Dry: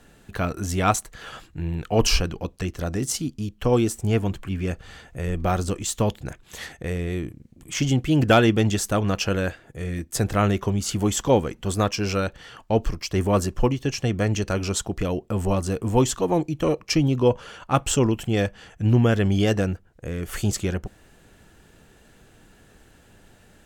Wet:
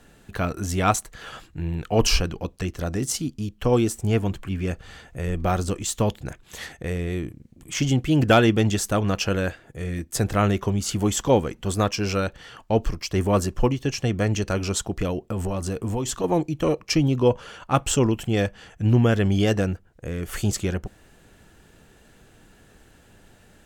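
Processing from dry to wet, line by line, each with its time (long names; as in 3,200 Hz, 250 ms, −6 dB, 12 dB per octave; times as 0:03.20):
0:15.10–0:16.24: downward compressor, threshold −22 dBFS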